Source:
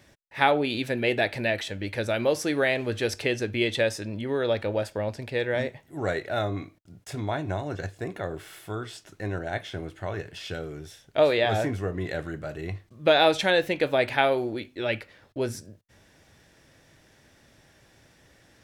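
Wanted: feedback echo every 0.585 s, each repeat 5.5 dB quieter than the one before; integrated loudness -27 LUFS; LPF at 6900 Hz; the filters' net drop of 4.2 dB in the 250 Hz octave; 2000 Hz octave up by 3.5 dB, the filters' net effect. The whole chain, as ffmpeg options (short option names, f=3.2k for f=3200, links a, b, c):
-af "lowpass=6.9k,equalizer=f=250:t=o:g=-6,equalizer=f=2k:t=o:g=4.5,aecho=1:1:585|1170|1755|2340|2925|3510|4095:0.531|0.281|0.149|0.079|0.0419|0.0222|0.0118,volume=-1.5dB"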